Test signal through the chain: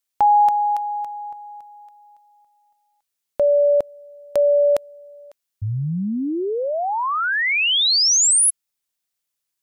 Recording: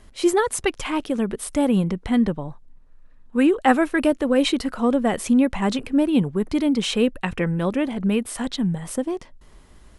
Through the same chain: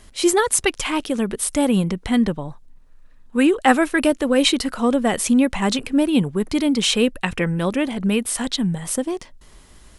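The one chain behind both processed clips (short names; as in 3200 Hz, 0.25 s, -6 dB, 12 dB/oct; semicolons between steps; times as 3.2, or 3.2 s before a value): high shelf 2500 Hz +8.5 dB; gain +1 dB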